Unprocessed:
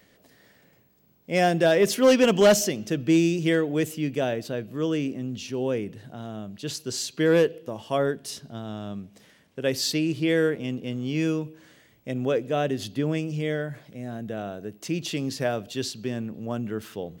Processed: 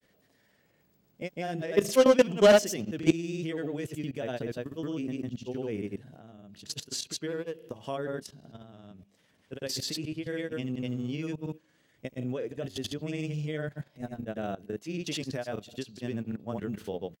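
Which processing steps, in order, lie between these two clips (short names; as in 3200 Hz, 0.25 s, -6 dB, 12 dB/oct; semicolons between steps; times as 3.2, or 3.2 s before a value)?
level quantiser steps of 17 dB; grains, grains 20/s, pitch spread up and down by 0 st; gain +2 dB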